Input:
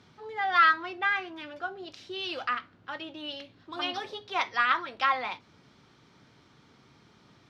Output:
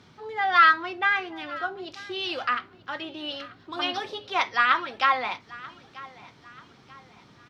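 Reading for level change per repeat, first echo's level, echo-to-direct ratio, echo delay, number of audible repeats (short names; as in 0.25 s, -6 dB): -7.5 dB, -20.0 dB, -19.0 dB, 0.936 s, 2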